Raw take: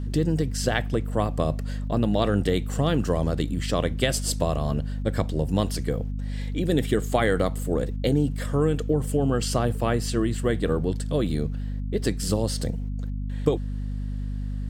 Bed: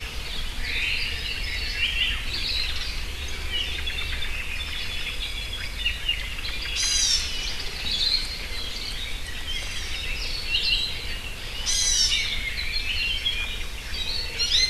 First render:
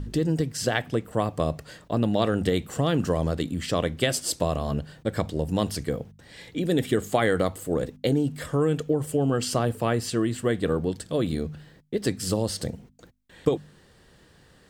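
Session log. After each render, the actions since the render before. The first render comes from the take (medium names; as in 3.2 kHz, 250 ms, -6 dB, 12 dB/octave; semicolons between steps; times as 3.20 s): de-hum 50 Hz, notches 5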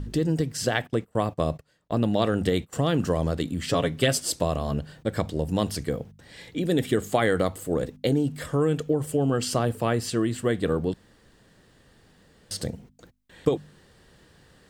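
0.87–2.73 s: gate -38 dBFS, range -22 dB; 3.66–4.18 s: comb 7.2 ms, depth 62%; 10.94–12.51 s: room tone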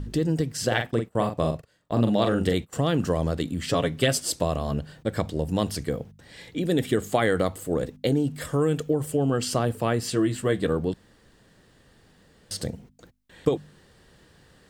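0.67–2.54 s: doubling 43 ms -6 dB; 8.40–9.07 s: treble shelf 5.9 kHz -> 11 kHz +6.5 dB; 10.01–10.67 s: doubling 15 ms -6.5 dB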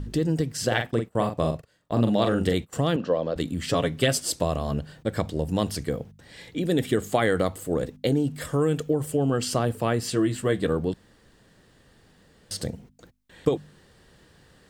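2.96–3.36 s: cabinet simulation 250–4300 Hz, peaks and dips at 370 Hz -5 dB, 530 Hz +7 dB, 840 Hz -4 dB, 1.4 kHz -4 dB, 2.1 kHz -7 dB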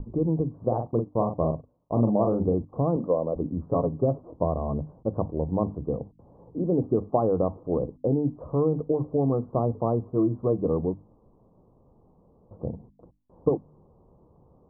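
steep low-pass 1.1 kHz 72 dB/octave; hum notches 50/100/150/200/250/300 Hz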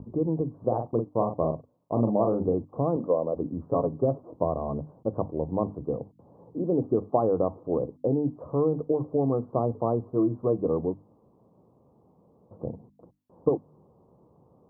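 high-pass 110 Hz 12 dB/octave; dynamic bell 180 Hz, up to -4 dB, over -42 dBFS, Q 2.1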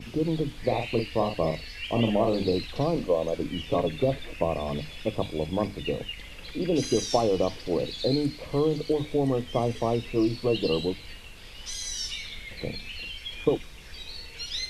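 add bed -12 dB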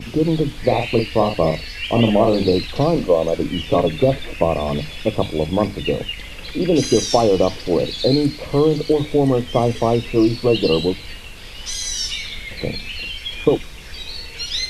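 trim +9 dB; peak limiter -1 dBFS, peak gain reduction 1.5 dB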